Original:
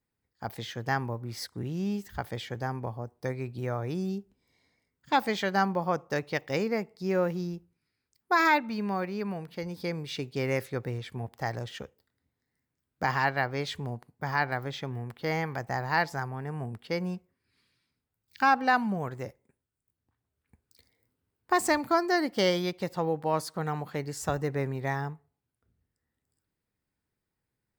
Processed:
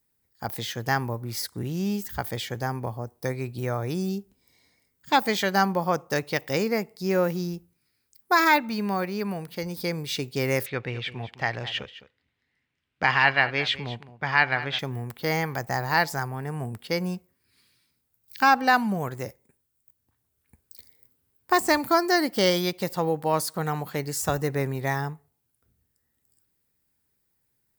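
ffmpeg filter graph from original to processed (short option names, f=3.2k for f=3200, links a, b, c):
-filter_complex "[0:a]asettb=1/sr,asplit=3[a][b][c];[a]atrim=end=10.664[d];[b]atrim=start=10.66:end=14.79,asetpts=PTS-STARTPTS,afade=t=in:d=0.004:c=qsin,afade=t=out:st=4.126:d=0.004:c=qsin,lowpass=f=2.8k:t=q:w=2.4,tiltshelf=f=1.2k:g=-3,aecho=1:1:210:0.178,atrim=end_sample=182133[e];[c]atrim=start=14.786[f];[d][e]acrossfade=d=0.004:c1=hsin:c2=qsin[g];[g][f]acrossfade=d=0.004:c1=qsin:c2=hsin,aemphasis=mode=production:type=50kf,deesser=0.45,volume=3.5dB"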